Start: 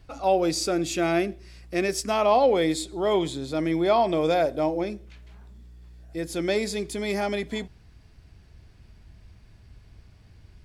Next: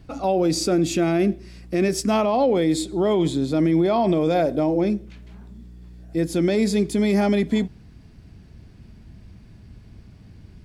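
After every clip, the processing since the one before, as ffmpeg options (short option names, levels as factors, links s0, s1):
-af "equalizer=f=210:t=o:w=1.7:g=11.5,alimiter=limit=0.2:level=0:latency=1:release=35,volume=1.26"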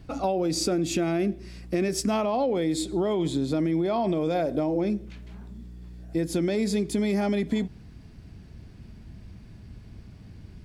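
-af "acompressor=threshold=0.0794:ratio=6"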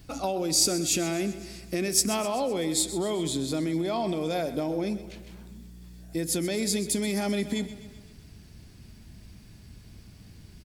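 -af "crystalizer=i=4:c=0,aecho=1:1:128|256|384|512|640|768:0.2|0.114|0.0648|0.037|0.0211|0.012,volume=0.631"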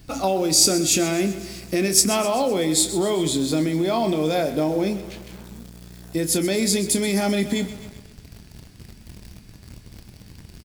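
-filter_complex "[0:a]asplit=2[s0][s1];[s1]acrusher=bits=6:mix=0:aa=0.000001,volume=0.473[s2];[s0][s2]amix=inputs=2:normalize=0,asplit=2[s3][s4];[s4]adelay=26,volume=0.299[s5];[s3][s5]amix=inputs=2:normalize=0,volume=1.41"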